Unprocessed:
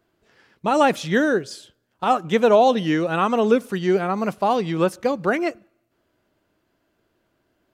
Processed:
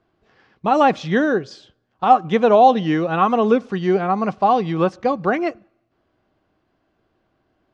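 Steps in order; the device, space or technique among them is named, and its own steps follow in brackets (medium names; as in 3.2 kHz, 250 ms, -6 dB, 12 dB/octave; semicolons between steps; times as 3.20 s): low-pass 6.1 kHz 24 dB/octave; bass shelf 240 Hz +4 dB; inside a helmet (treble shelf 5.6 kHz -6.5 dB; small resonant body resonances 770/1100 Hz, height 9 dB)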